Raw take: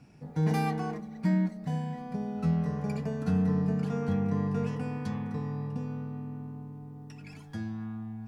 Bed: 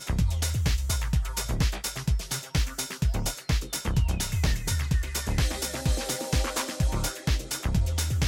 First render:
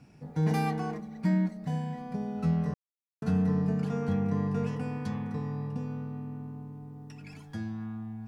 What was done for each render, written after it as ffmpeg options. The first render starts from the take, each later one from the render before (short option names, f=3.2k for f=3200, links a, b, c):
-filter_complex "[0:a]asplit=3[a][b][c];[a]atrim=end=2.74,asetpts=PTS-STARTPTS,afade=t=out:st=2.736:d=0.004:c=hsin[d];[b]atrim=start=2.74:end=3.22,asetpts=PTS-STARTPTS,volume=0[e];[c]atrim=start=3.22,asetpts=PTS-STARTPTS,afade=t=in:d=0.004:c=hsin[f];[d][e][f]concat=n=3:v=0:a=1"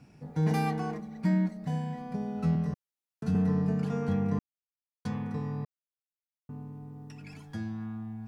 -filter_complex "[0:a]asettb=1/sr,asplit=3[a][b][c];[a]atrim=end=2.554[d];[b]atrim=start=2.55:end=3.35,asetpts=PTS-STARTPTS,afade=t=in:d=0.004:c=qsin,afade=t=out:st=0.796:d=0.004:c=qsin,acrossover=split=300|3000[e][f][g];[f]acompressor=threshold=-41dB:ratio=6:attack=3.2:release=140:knee=2.83:detection=peak[h];[e][h][g]amix=inputs=3:normalize=0[i];[c]atrim=start=3.346[j];[d][i]acrossfade=d=0.004:c1=hsin:c2=qsin[k];[k][j]acrossfade=d=0.004:c1=qsin:c2=hsin,asplit=5[l][m][n][o][p];[l]atrim=end=4.39,asetpts=PTS-STARTPTS,afade=t=out:st=4.386:d=0.004:c=hsin[q];[m]atrim=start=4.39:end=5.05,asetpts=PTS-STARTPTS,volume=0[r];[n]atrim=start=5.05:end=5.65,asetpts=PTS-STARTPTS,afade=t=in:d=0.004:c=hsin,afade=t=out:st=0.596:d=0.004:c=hsin[s];[o]atrim=start=5.65:end=6.49,asetpts=PTS-STARTPTS,volume=0[t];[p]atrim=start=6.49,asetpts=PTS-STARTPTS,afade=t=in:d=0.004:c=hsin[u];[q][r][s][t][u]concat=n=5:v=0:a=1"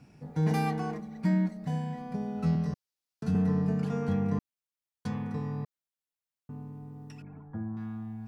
-filter_complex "[0:a]asettb=1/sr,asplit=3[a][b][c];[a]atrim=end=2.464[d];[b]atrim=start=2.46:end=3.26,asetpts=PTS-STARTPTS,afade=t=in:d=0.004:c=qsin,afade=t=out:st=0.796:d=0.004:c=qsin,equalizer=f=4.8k:t=o:w=0.8:g=7[e];[c]atrim=start=3.256[f];[d][e]acrossfade=d=0.004:c1=hsin:c2=qsin[g];[g][f]acrossfade=d=0.004:c1=qsin:c2=hsin,asettb=1/sr,asplit=3[h][i][j];[h]atrim=end=7.224[k];[i]atrim=start=7.22:end=7.77,asetpts=PTS-STARTPTS,afade=t=in:d=0.004:c=qsin,afade=t=out:st=0.546:d=0.004:c=qsin,lowpass=f=1.3k:w=0.5412,lowpass=f=1.3k:w=1.3066[l];[j]atrim=start=7.766[m];[k][l]acrossfade=d=0.004:c1=hsin:c2=qsin[n];[n][m]acrossfade=d=0.004:c1=qsin:c2=hsin"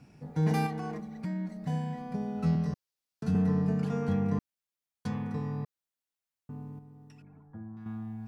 -filter_complex "[0:a]asettb=1/sr,asplit=3[a][b][c];[a]atrim=end=0.664[d];[b]atrim=start=0.66:end=1.65,asetpts=PTS-STARTPTS,afade=t=in:d=0.004:c=qsin,afade=t=out:st=0.986:d=0.004:c=qsin,acompressor=threshold=-31dB:ratio=6:attack=3.2:release=140:knee=1:detection=peak[e];[c]atrim=start=1.646[f];[d][e]acrossfade=d=0.004:c1=hsin:c2=qsin[g];[g][f]acrossfade=d=0.004:c1=qsin:c2=hsin,asplit=3[h][i][j];[h]atrim=end=6.792[k];[i]atrim=start=6.788:end=7.862,asetpts=PTS-STARTPTS,volume=-7.5dB[l];[j]atrim=start=7.858[m];[k][l]acrossfade=d=0.004:c1=hsin:c2=hsin[n];[n][m]acrossfade=d=0.004:c1=hsin:c2=hsin"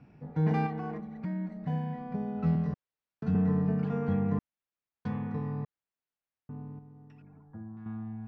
-af "lowpass=2.4k"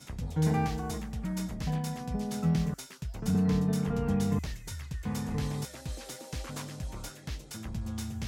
-filter_complex "[1:a]volume=-12.5dB[a];[0:a][a]amix=inputs=2:normalize=0"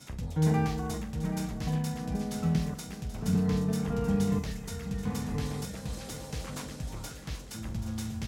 -filter_complex "[0:a]asplit=2[a][b];[b]adelay=45,volume=-11.5dB[c];[a][c]amix=inputs=2:normalize=0,asplit=2[d][e];[e]aecho=0:1:781|1562|2343|3124|3905:0.266|0.128|0.0613|0.0294|0.0141[f];[d][f]amix=inputs=2:normalize=0"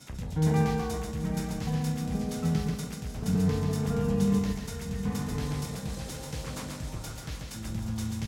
-af "aecho=1:1:137|274|411|548:0.631|0.196|0.0606|0.0188"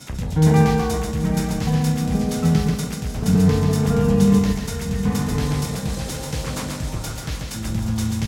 -af "volume=10dB"